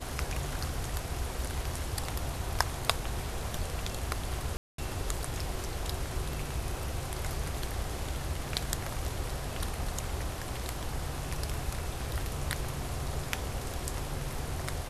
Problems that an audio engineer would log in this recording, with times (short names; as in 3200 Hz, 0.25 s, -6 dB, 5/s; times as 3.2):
4.57–4.78 gap 0.213 s